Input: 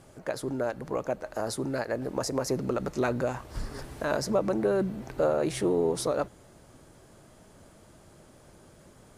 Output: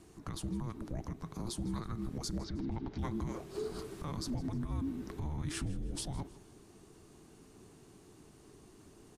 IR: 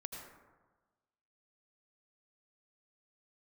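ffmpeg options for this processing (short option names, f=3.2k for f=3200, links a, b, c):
-filter_complex "[0:a]alimiter=level_in=1.5dB:limit=-24dB:level=0:latency=1:release=58,volume=-1.5dB,afreqshift=-460,asettb=1/sr,asplit=3[a][b][c];[a]atrim=end=2.394[d];[b]atrim=start=2.39:end=2.99,asetpts=PTS-STARTPTS,afade=t=in:d=0.004:c=qsin,afade=t=out:st=0.596:d=0.004:c=qsin,lowpass=f=4.2k:w=0.5412,lowpass=f=4.2k:w=1.3066[e];[c]atrim=start=2.986[f];[d][e]acrossfade=d=0.004:c1=hsin:c2=qsin[g];[g][f]acrossfade=d=0.004:c1=qsin:c2=hsin,aecho=1:1:159|318|477:0.112|0.0415|0.0154,volume=-3.5dB"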